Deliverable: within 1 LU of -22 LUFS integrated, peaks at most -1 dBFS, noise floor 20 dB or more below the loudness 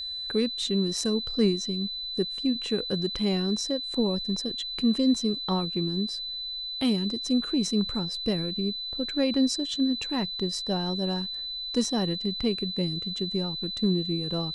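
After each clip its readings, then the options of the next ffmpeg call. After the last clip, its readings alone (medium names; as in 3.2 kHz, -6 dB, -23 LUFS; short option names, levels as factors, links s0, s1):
steady tone 4 kHz; tone level -32 dBFS; loudness -27.5 LUFS; peak level -12.5 dBFS; loudness target -22.0 LUFS
-> -af "bandreject=f=4000:w=30"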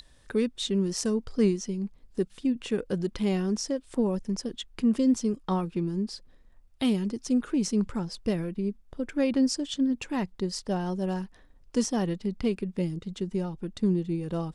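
steady tone not found; loudness -29.0 LUFS; peak level -13.0 dBFS; loudness target -22.0 LUFS
-> -af "volume=2.24"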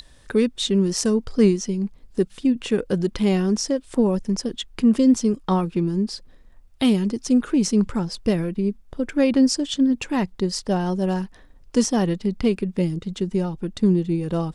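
loudness -22.0 LUFS; peak level -6.0 dBFS; noise floor -50 dBFS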